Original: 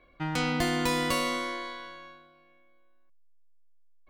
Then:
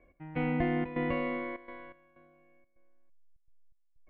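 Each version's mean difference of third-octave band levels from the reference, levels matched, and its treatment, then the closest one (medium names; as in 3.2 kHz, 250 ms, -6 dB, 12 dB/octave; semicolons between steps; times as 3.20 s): 9.0 dB: steep low-pass 2.3 kHz 36 dB/octave; peaking EQ 1.3 kHz -13 dB 0.79 oct; trance gate "x..xxxx.xxxxx.x" 125 bpm -12 dB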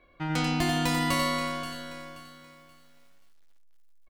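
5.5 dB: de-hum 99.06 Hz, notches 39; on a send: delay 90 ms -5 dB; on the sum: bit-crushed delay 529 ms, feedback 35%, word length 9-bit, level -12.5 dB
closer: second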